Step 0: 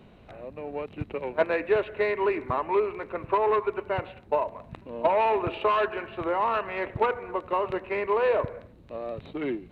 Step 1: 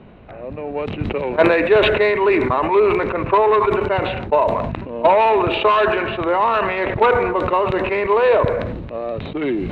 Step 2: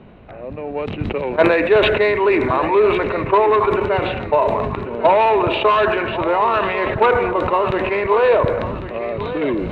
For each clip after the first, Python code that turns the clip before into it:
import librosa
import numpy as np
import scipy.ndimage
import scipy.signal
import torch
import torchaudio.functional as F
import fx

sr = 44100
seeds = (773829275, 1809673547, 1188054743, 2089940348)

y1 = fx.env_lowpass(x, sr, base_hz=2400.0, full_db=-22.0)
y1 = fx.dynamic_eq(y1, sr, hz=3700.0, q=5.1, threshold_db=-58.0, ratio=4.0, max_db=5)
y1 = fx.sustainer(y1, sr, db_per_s=35.0)
y1 = y1 * 10.0 ** (8.5 / 20.0)
y2 = fx.echo_feedback(y1, sr, ms=1096, feedback_pct=35, wet_db=-12.5)